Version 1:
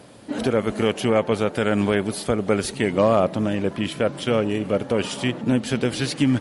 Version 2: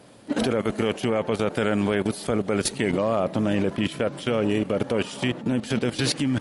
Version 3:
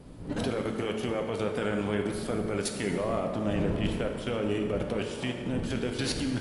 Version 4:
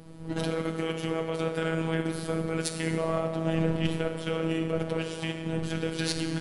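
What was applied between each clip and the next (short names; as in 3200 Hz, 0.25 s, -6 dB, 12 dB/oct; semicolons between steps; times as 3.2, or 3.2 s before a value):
bell 66 Hz -3 dB 1.1 oct; level quantiser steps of 14 dB; gain +5.5 dB
wind noise 220 Hz -33 dBFS; plate-style reverb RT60 2 s, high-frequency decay 0.65×, DRR 3 dB; gain -8 dB
added harmonics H 3 -21 dB, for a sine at -14 dBFS; robotiser 162 Hz; gain +5.5 dB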